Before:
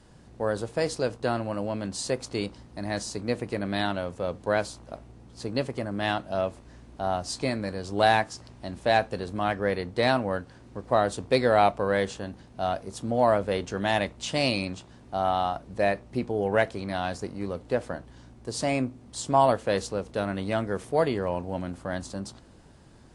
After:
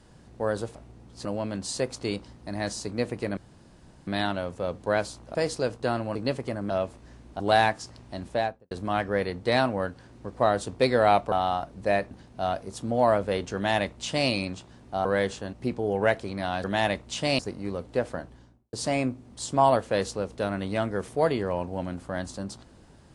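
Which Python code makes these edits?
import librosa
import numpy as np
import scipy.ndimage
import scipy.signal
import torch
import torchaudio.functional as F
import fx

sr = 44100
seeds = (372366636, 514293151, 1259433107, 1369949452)

y = fx.studio_fade_out(x, sr, start_s=8.72, length_s=0.5)
y = fx.studio_fade_out(y, sr, start_s=17.98, length_s=0.51)
y = fx.edit(y, sr, fx.swap(start_s=0.75, length_s=0.8, other_s=4.95, other_length_s=0.5),
    fx.insert_room_tone(at_s=3.67, length_s=0.7),
    fx.cut(start_s=6.0, length_s=0.33),
    fx.cut(start_s=7.03, length_s=0.88),
    fx.swap(start_s=11.83, length_s=0.48, other_s=15.25, other_length_s=0.79),
    fx.duplicate(start_s=13.75, length_s=0.75, to_s=17.15), tone=tone)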